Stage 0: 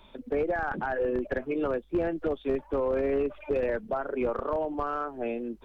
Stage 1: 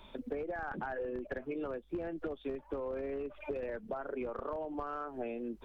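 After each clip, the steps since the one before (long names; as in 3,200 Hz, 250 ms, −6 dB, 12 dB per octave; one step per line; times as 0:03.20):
downward compressor 10 to 1, threshold −35 dBFS, peak gain reduction 12.5 dB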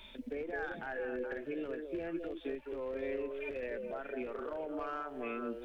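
high shelf with overshoot 1,500 Hz +8 dB, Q 1.5
harmonic and percussive parts rebalanced percussive −10 dB
echo through a band-pass that steps 211 ms, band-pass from 460 Hz, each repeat 1.4 octaves, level −2 dB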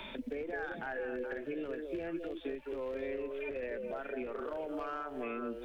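multiband upward and downward compressor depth 70%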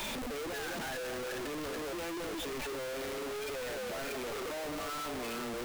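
sign of each sample alone
level +1 dB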